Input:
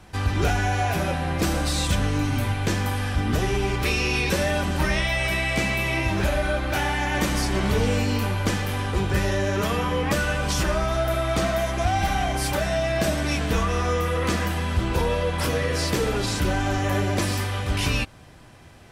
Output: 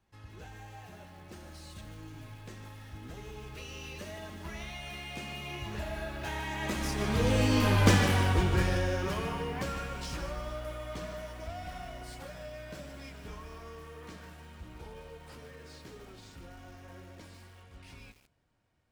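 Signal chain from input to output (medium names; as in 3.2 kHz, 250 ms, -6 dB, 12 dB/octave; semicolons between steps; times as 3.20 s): median filter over 3 samples; Doppler pass-by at 7.91 s, 25 m/s, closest 8.5 m; bit-crushed delay 151 ms, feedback 35%, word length 9-bit, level -9 dB; trim +1.5 dB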